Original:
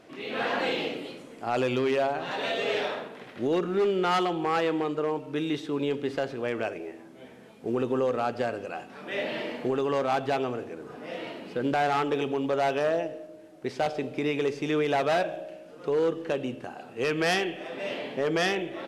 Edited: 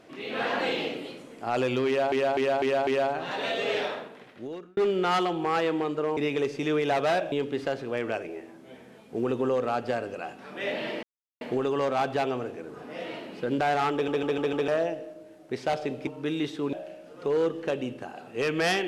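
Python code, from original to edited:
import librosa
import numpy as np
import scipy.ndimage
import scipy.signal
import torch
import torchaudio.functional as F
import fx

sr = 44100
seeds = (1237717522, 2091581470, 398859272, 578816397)

y = fx.edit(x, sr, fx.repeat(start_s=1.87, length_s=0.25, count=5),
    fx.fade_out_span(start_s=2.82, length_s=0.95),
    fx.swap(start_s=5.17, length_s=0.66, other_s=14.2, other_length_s=1.15),
    fx.insert_silence(at_s=9.54, length_s=0.38),
    fx.stutter_over(start_s=12.06, slice_s=0.15, count=5), tone=tone)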